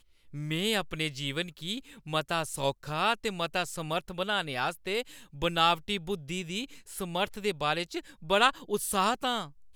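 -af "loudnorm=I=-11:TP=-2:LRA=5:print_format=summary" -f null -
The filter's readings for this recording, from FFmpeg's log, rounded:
Input Integrated:    -30.2 LUFS
Input True Peak:      -9.6 dBTP
Input LRA:             2.3 LU
Input Threshold:     -40.4 LUFS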